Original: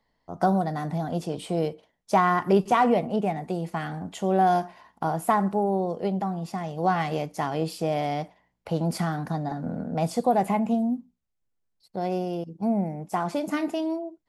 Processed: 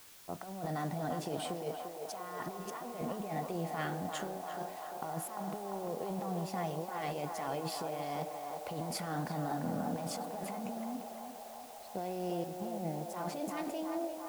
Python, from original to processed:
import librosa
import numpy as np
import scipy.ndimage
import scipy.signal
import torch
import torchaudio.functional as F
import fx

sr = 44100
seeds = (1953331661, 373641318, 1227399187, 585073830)

y = fx.low_shelf(x, sr, hz=130.0, db=-8.5)
y = fx.over_compress(y, sr, threshold_db=-32.0, ratio=-1.0)
y = fx.quant_dither(y, sr, seeds[0], bits=8, dither='triangular')
y = fx.echo_banded(y, sr, ms=346, feedback_pct=81, hz=810.0, wet_db=-3.5)
y = F.gain(torch.from_numpy(y), -8.0).numpy()